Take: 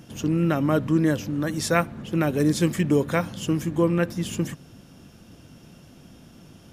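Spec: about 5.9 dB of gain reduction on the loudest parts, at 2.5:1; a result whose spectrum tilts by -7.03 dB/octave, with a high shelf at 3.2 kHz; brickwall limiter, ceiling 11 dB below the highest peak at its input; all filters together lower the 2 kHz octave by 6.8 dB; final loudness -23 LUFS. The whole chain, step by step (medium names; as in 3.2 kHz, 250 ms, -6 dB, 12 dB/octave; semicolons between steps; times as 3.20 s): peaking EQ 2 kHz -7.5 dB; treble shelf 3.2 kHz -6 dB; compression 2.5:1, threshold -25 dBFS; trim +11.5 dB; peak limiter -14 dBFS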